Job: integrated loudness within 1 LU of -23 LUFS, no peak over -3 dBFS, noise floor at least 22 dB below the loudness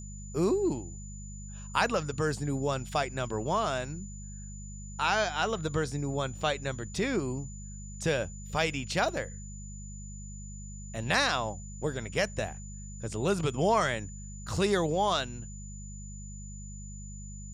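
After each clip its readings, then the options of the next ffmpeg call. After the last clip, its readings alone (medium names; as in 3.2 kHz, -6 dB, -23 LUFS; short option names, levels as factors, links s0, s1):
hum 50 Hz; highest harmonic 200 Hz; hum level -40 dBFS; steady tone 7 kHz; tone level -48 dBFS; loudness -30.5 LUFS; peak level -11.0 dBFS; loudness target -23.0 LUFS
-> -af "bandreject=f=50:t=h:w=4,bandreject=f=100:t=h:w=4,bandreject=f=150:t=h:w=4,bandreject=f=200:t=h:w=4"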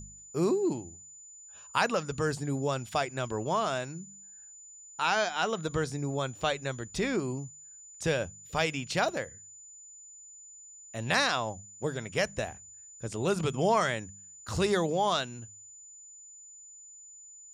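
hum not found; steady tone 7 kHz; tone level -48 dBFS
-> -af "bandreject=f=7000:w=30"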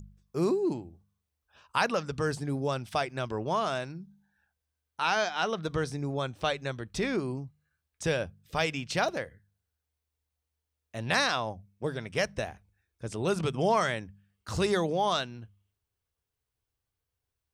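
steady tone not found; loudness -30.5 LUFS; peak level -11.0 dBFS; loudness target -23.0 LUFS
-> -af "volume=2.37"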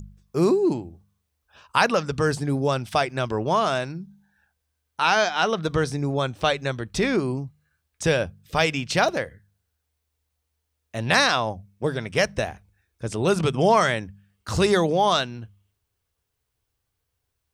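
loudness -23.5 LUFS; peak level -3.5 dBFS; noise floor -78 dBFS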